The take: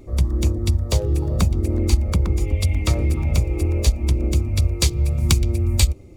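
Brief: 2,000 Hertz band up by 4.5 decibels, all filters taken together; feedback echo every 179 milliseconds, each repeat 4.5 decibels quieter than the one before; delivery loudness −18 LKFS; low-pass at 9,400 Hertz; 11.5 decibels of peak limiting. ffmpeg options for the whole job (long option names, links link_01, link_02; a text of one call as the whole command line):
ffmpeg -i in.wav -af "lowpass=9400,equalizer=frequency=2000:width_type=o:gain=5.5,alimiter=limit=-12dB:level=0:latency=1,aecho=1:1:179|358|537|716|895|1074|1253|1432|1611:0.596|0.357|0.214|0.129|0.0772|0.0463|0.0278|0.0167|0.01,volume=3.5dB" out.wav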